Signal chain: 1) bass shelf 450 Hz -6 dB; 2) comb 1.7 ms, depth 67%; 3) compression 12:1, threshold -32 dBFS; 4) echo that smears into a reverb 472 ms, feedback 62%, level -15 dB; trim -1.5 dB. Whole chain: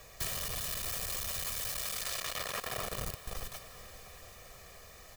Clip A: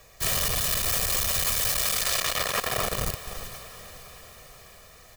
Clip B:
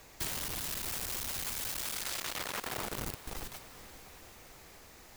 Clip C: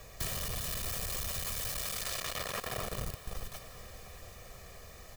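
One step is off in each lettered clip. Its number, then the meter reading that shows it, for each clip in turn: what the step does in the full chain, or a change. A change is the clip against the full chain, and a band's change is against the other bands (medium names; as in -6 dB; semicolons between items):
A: 3, mean gain reduction 6.5 dB; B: 2, 250 Hz band +5.0 dB; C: 1, 125 Hz band +4.0 dB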